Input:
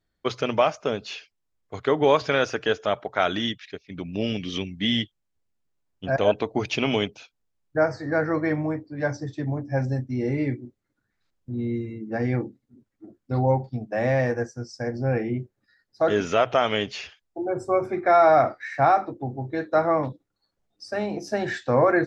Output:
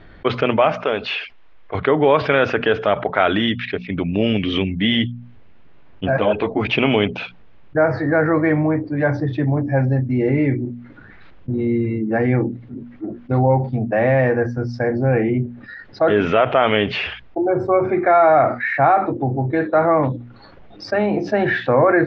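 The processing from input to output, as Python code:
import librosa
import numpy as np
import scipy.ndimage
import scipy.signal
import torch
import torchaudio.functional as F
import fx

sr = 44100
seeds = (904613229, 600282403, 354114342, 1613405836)

y = fx.peak_eq(x, sr, hz=130.0, db=-14.0, octaves=2.8, at=(0.78, 1.75))
y = fx.ensemble(y, sr, at=(6.1, 6.67), fade=0.02)
y = scipy.signal.sosfilt(scipy.signal.butter(4, 3000.0, 'lowpass', fs=sr, output='sos'), y)
y = fx.hum_notches(y, sr, base_hz=60, count=4)
y = fx.env_flatten(y, sr, amount_pct=50)
y = y * librosa.db_to_amplitude(3.0)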